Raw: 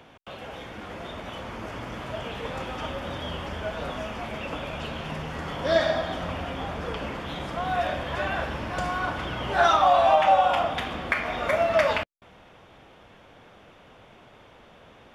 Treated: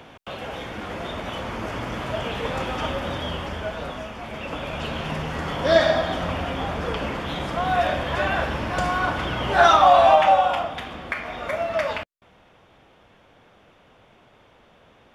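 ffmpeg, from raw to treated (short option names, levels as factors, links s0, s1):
-af "volume=4.47,afade=t=out:st=2.89:d=1.27:silence=0.398107,afade=t=in:st=4.16:d=0.81:silence=0.446684,afade=t=out:st=10.04:d=0.66:silence=0.398107"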